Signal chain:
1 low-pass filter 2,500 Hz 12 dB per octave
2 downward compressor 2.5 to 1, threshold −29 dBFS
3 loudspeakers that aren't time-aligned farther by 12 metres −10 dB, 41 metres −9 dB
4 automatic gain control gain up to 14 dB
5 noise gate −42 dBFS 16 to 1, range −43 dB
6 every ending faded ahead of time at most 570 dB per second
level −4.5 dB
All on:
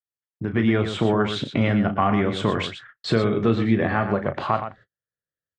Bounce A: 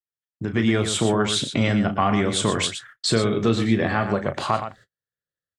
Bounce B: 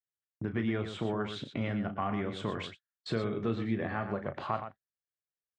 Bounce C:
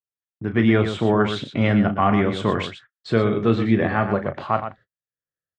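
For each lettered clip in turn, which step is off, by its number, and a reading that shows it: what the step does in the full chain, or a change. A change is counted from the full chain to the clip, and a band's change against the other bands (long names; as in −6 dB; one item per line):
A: 1, 4 kHz band +6.5 dB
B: 4, change in integrated loudness −12.0 LU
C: 2, average gain reduction 7.0 dB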